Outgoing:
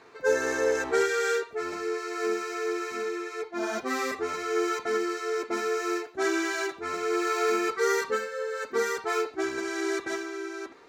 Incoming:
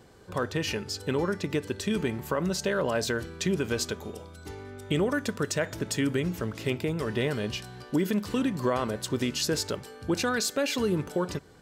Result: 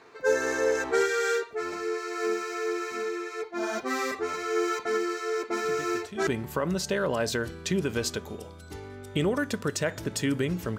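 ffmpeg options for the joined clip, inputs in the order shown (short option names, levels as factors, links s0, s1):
-filter_complex "[1:a]asplit=2[s0][s1];[0:a]apad=whole_dur=10.78,atrim=end=10.78,atrim=end=6.272[s2];[s1]atrim=start=2.018:end=6.53[s3];[s0]atrim=start=1.39:end=2.02,asetpts=PTS-STARTPTS,volume=0.237,afade=t=in:d=0.004:c=hsin,afade=t=out:st=0.626:d=0.004:c=hsin,adelay=5640[s4];[s2][s3]acrossfade=d=0.004:c1=hsin:c2=hsin[s5];[s5][s4]amix=inputs=2:normalize=0"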